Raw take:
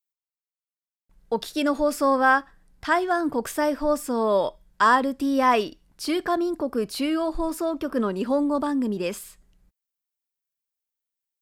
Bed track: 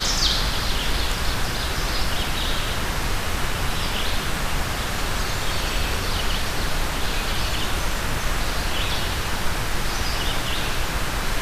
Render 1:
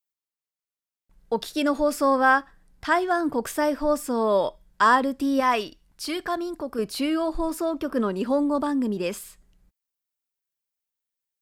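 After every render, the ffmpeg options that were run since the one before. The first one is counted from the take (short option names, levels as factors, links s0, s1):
-filter_complex "[0:a]asettb=1/sr,asplit=3[s0][s1][s2];[s0]atrim=end=5.404[s3];[s1]atrim=start=5.4:end=6.79,asetpts=PTS-STARTPTS,afade=t=in:d=0.004:c=qsin,afade=t=out:st=1.386:d=0.004:c=qsin,equalizer=f=320:t=o:w=2.8:g=-5.5[s4];[s2]atrim=start=6.786[s5];[s3][s4]acrossfade=d=0.004:c1=hsin:c2=qsin[s6];[s6][s5]acrossfade=d=0.004:c1=qsin:c2=hsin"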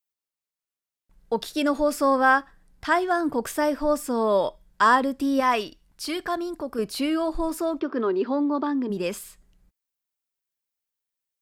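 -filter_complex "[0:a]asplit=3[s0][s1][s2];[s0]afade=t=out:st=7.79:d=0.02[s3];[s1]highpass=190,equalizer=f=200:t=q:w=4:g=-8,equalizer=f=370:t=q:w=4:g=9,equalizer=f=550:t=q:w=4:g=-6,equalizer=f=2900:t=q:w=4:g=-4,lowpass=f=4500:w=0.5412,lowpass=f=4500:w=1.3066,afade=t=in:st=7.79:d=0.02,afade=t=out:st=8.89:d=0.02[s4];[s2]afade=t=in:st=8.89:d=0.02[s5];[s3][s4][s5]amix=inputs=3:normalize=0"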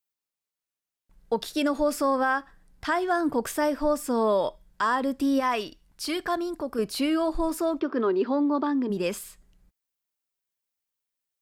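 -af "alimiter=limit=0.168:level=0:latency=1:release=164"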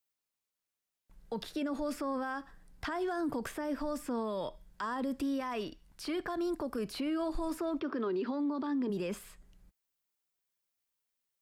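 -filter_complex "[0:a]acrossover=split=290|1500|3000[s0][s1][s2][s3];[s0]acompressor=threshold=0.0282:ratio=4[s4];[s1]acompressor=threshold=0.0251:ratio=4[s5];[s2]acompressor=threshold=0.00631:ratio=4[s6];[s3]acompressor=threshold=0.00251:ratio=4[s7];[s4][s5][s6][s7]amix=inputs=4:normalize=0,alimiter=level_in=1.5:limit=0.0631:level=0:latency=1:release=36,volume=0.668"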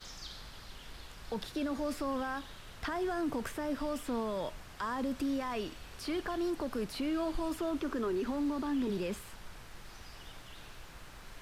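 -filter_complex "[1:a]volume=0.0501[s0];[0:a][s0]amix=inputs=2:normalize=0"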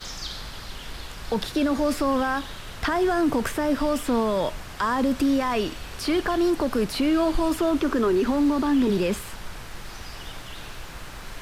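-af "volume=3.98"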